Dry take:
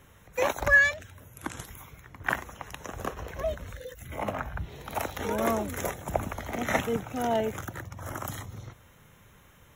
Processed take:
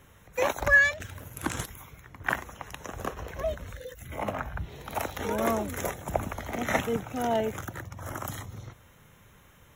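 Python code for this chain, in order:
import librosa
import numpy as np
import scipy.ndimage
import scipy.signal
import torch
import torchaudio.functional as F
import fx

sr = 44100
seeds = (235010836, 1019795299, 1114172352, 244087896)

y = fx.leveller(x, sr, passes=2, at=(1.0, 1.66))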